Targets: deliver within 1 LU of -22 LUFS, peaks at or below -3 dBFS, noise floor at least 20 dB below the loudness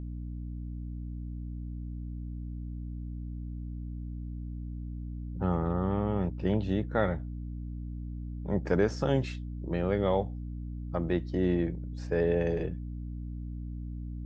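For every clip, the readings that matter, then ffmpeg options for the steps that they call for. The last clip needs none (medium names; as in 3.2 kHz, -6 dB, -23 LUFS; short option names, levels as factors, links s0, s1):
hum 60 Hz; highest harmonic 300 Hz; hum level -35 dBFS; loudness -33.5 LUFS; peak level -12.5 dBFS; loudness target -22.0 LUFS
-> -af "bandreject=f=60:t=h:w=6,bandreject=f=120:t=h:w=6,bandreject=f=180:t=h:w=6,bandreject=f=240:t=h:w=6,bandreject=f=300:t=h:w=6"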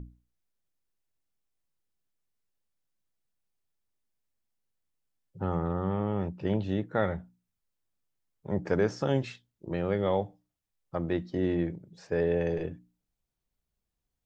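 hum not found; loudness -31.0 LUFS; peak level -13.0 dBFS; loudness target -22.0 LUFS
-> -af "volume=2.82"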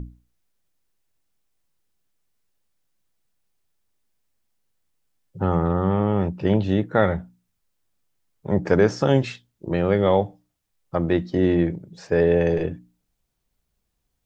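loudness -22.0 LUFS; peak level -4.0 dBFS; noise floor -76 dBFS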